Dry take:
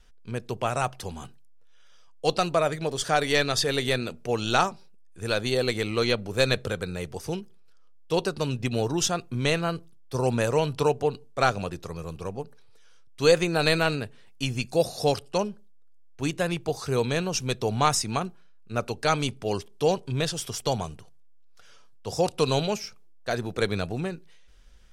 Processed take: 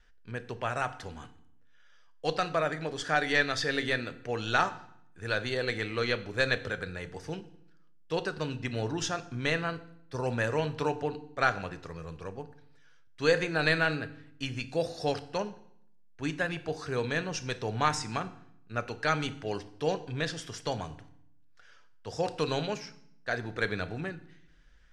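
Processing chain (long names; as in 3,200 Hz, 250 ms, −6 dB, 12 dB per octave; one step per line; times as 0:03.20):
low-pass filter 6,200 Hz 12 dB per octave
parametric band 1,700 Hz +10.5 dB 0.59 octaves
feedback delay network reverb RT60 0.68 s, low-frequency decay 1.5×, high-frequency decay 0.9×, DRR 10.5 dB
level −7 dB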